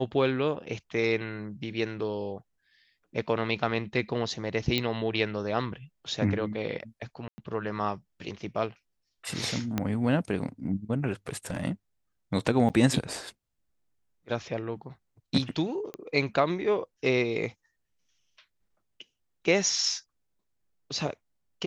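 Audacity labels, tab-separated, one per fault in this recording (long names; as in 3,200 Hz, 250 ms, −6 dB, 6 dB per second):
4.780000	4.780000	click −13 dBFS
7.280000	7.380000	drop-out 100 ms
9.780000	9.780000	click −13 dBFS
11.270000	11.640000	clipping −26.5 dBFS
12.690000	12.700000	drop-out 8.1 ms
15.940000	15.940000	click −23 dBFS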